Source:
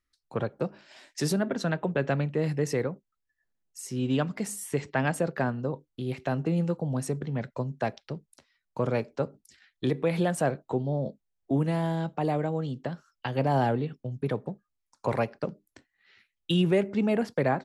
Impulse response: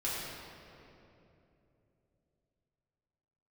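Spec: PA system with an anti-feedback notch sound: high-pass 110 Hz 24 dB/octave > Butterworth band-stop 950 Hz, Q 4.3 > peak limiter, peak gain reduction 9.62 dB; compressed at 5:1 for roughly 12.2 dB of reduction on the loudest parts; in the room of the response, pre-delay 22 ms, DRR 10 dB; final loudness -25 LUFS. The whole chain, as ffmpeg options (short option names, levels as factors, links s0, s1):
-filter_complex "[0:a]acompressor=threshold=0.02:ratio=5,asplit=2[s0][s1];[1:a]atrim=start_sample=2205,adelay=22[s2];[s1][s2]afir=irnorm=-1:irlink=0,volume=0.168[s3];[s0][s3]amix=inputs=2:normalize=0,highpass=f=110:w=0.5412,highpass=f=110:w=1.3066,asuperstop=centerf=950:order=8:qfactor=4.3,volume=6.68,alimiter=limit=0.188:level=0:latency=1"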